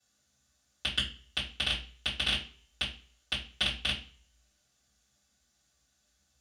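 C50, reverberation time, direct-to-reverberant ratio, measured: 9.5 dB, 0.45 s, −11.5 dB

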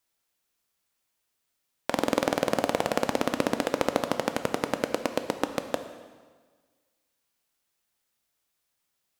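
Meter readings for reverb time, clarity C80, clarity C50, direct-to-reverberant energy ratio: 1.5 s, 11.0 dB, 9.5 dB, 8.0 dB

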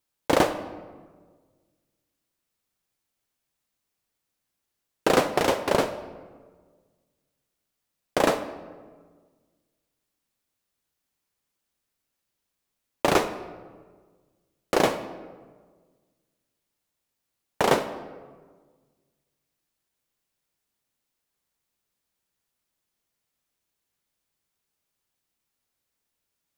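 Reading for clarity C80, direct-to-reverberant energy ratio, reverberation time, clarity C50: 13.0 dB, 11.0 dB, 1.5 s, 11.5 dB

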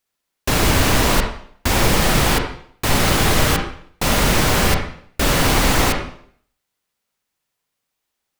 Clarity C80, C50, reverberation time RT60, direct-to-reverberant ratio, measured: 8.5 dB, 5.0 dB, 0.60 s, 2.5 dB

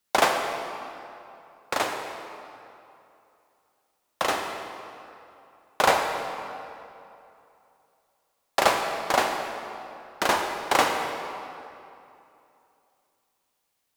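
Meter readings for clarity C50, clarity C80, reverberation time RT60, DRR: 4.0 dB, 4.5 dB, 2.8 s, 3.0 dB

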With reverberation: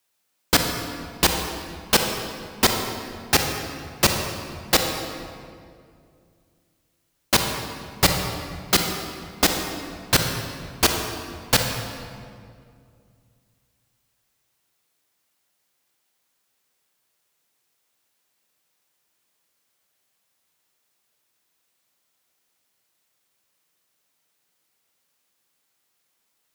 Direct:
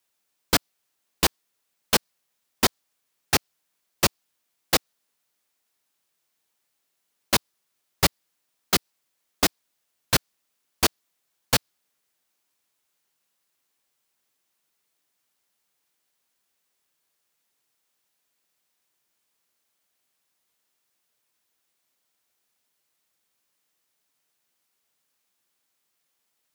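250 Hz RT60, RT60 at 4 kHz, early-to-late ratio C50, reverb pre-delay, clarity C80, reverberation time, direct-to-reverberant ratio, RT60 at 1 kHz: 2.8 s, 1.5 s, 4.0 dB, 31 ms, 5.5 dB, 2.3 s, 3.0 dB, 2.0 s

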